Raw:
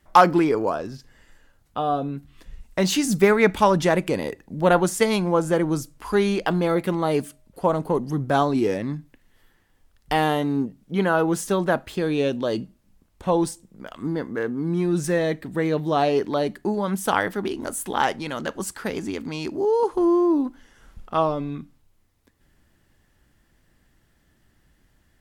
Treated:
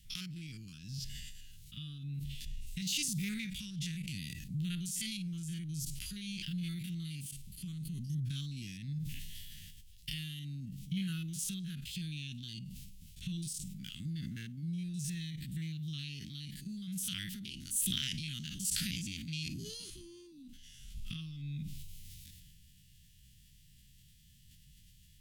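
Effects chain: stepped spectrum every 50 ms; compressor 5:1, threshold -37 dBFS, peak gain reduction 24 dB; elliptic band-stop 160–2900 Hz, stop band 80 dB; low shelf 130 Hz -6.5 dB; sustainer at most 20 dB/s; gain +7.5 dB

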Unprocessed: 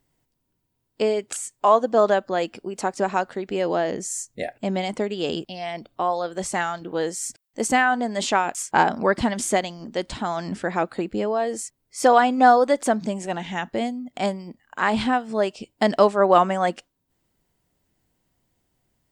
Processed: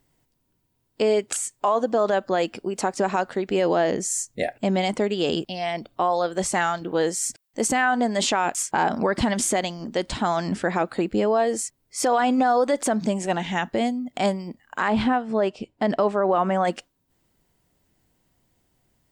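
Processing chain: 14.88–16.65 LPF 1900 Hz 6 dB/oct; limiter -15.5 dBFS, peak gain reduction 11.5 dB; gain +3.5 dB

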